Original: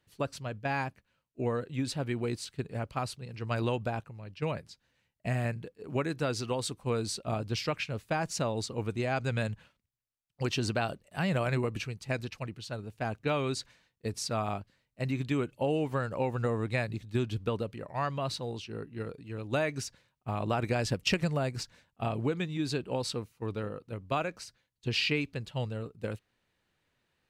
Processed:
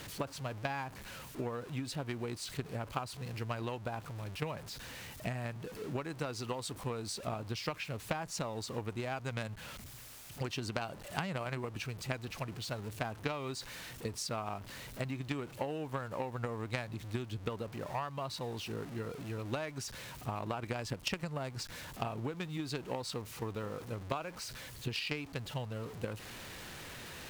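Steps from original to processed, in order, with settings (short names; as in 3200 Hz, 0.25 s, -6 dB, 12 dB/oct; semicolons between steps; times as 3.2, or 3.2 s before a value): zero-crossing step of -38 dBFS; dynamic EQ 980 Hz, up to +5 dB, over -46 dBFS, Q 1.8; compressor 6:1, threshold -35 dBFS, peak gain reduction 13 dB; added harmonics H 3 -12 dB, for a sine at -21.5 dBFS; gain +9 dB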